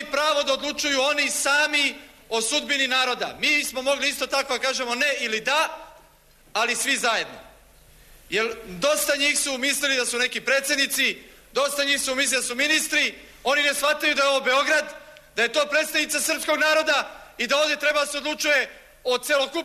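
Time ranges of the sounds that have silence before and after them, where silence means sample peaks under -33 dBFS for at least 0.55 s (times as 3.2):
6.55–7.37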